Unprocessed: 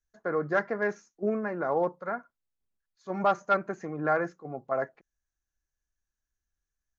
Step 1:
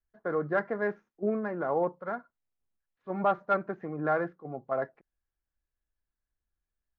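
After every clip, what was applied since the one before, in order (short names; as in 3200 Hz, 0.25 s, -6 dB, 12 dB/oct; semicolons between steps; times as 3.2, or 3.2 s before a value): median filter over 9 samples; air absorption 350 m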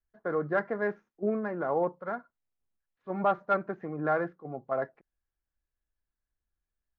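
nothing audible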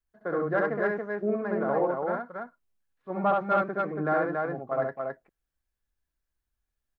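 loudspeakers at several distances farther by 23 m -2 dB, 96 m -3 dB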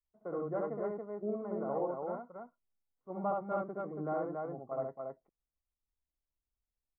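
polynomial smoothing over 65 samples; gain -8.5 dB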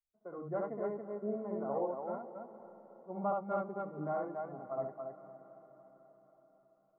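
spectral noise reduction 9 dB; diffused feedback echo 0.498 s, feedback 50%, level -15 dB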